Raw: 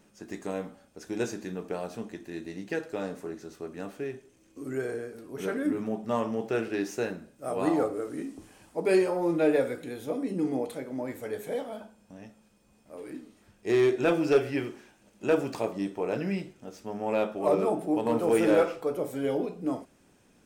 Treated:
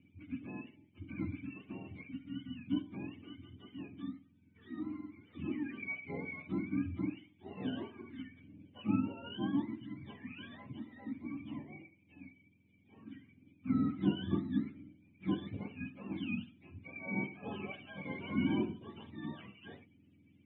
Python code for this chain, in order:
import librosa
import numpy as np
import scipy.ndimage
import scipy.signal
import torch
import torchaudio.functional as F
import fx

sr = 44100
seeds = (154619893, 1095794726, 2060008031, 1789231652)

y = fx.octave_mirror(x, sr, pivot_hz=700.0)
y = fx.formant_cascade(y, sr, vowel='i')
y = y * 10.0 ** (7.5 / 20.0)